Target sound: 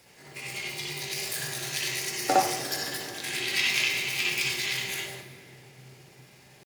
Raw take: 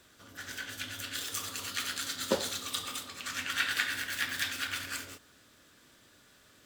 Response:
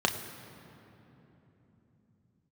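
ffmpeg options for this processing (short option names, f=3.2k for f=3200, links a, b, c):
-filter_complex "[0:a]asetrate=62367,aresample=44100,atempo=0.707107,asplit=2[a][b];[1:a]atrim=start_sample=2205,adelay=59[c];[b][c]afir=irnorm=-1:irlink=0,volume=-8dB[d];[a][d]amix=inputs=2:normalize=0,volume=2.5dB"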